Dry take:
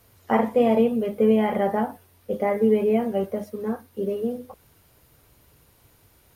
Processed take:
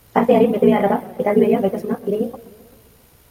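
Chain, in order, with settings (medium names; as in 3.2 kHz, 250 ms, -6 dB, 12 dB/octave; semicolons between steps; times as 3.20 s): granular stretch 0.52×, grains 33 ms; modulated delay 131 ms, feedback 61%, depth 201 cents, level -19 dB; trim +7.5 dB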